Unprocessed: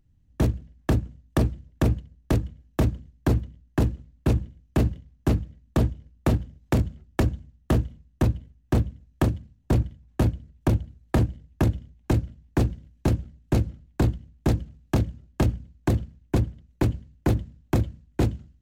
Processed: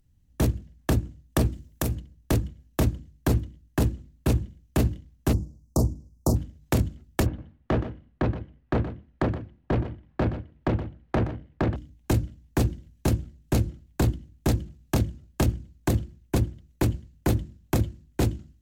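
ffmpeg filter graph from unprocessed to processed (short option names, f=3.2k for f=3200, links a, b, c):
-filter_complex "[0:a]asettb=1/sr,asplit=3[a][b][c];[a]atrim=end=1.524[d];[b]atrim=start=1.52:end=1.95,asetpts=PTS-STARTPTS,afade=t=in:d=0.004:c=qsin,afade=t=out:st=0.426:d=0.004:c=qsin,highshelf=f=5.7k:g=10.5,acompressor=threshold=-23dB:ratio=4:attack=3.2:release=140:knee=1:detection=peak[e];[c]atrim=start=1.946[f];[d][e]acrossfade=d=0.004:c1=hsin:c2=qsin[g];[g][f]acrossfade=d=0.004:c1=qsin:c2=hsin,asettb=1/sr,asplit=3[h][i][j];[h]atrim=end=5.334[k];[i]atrim=start=5.33:end=6.36,asetpts=PTS-STARTPTS,afade=t=in:d=0.004:c=qsin,afade=t=out:st=1.026:d=0.004:c=qsin,asuperstop=centerf=2400:order=8:qfactor=0.59,equalizer=f=5.2k:w=0.82:g=6[l];[j]atrim=start=6.356[m];[k][l]acrossfade=d=0.004:c1=hsin:c2=qsin[n];[n][m]acrossfade=d=0.004:c1=qsin:c2=hsin,asettb=1/sr,asplit=3[o][p][q];[o]atrim=end=7.264[r];[p]atrim=start=7.26:end=11.76,asetpts=PTS-STARTPTS,afade=t=in:d=0.004:c=qsin,afade=t=out:st=4.496:d=0.004:c=qsin,lowpass=2.3k,asplit=2[s][t];[t]highpass=f=720:p=1,volume=17dB,asoftclip=type=tanh:threshold=-14.5dB[u];[s][u]amix=inputs=2:normalize=0,lowpass=f=1.7k:p=1,volume=-6dB,aecho=1:1:122:0.237,atrim=end_sample=198450[v];[q]atrim=start=11.756[w];[r][v]acrossfade=d=0.004:c1=hsin:c2=qsin[x];[x][w]acrossfade=d=0.004:c1=qsin:c2=hsin,aemphasis=mode=production:type=cd,bandreject=f=50:t=h:w=6,bandreject=f=100:t=h:w=6,bandreject=f=150:t=h:w=6,bandreject=f=200:t=h:w=6,bandreject=f=250:t=h:w=6,bandreject=f=300:t=h:w=6,bandreject=f=350:t=h:w=6"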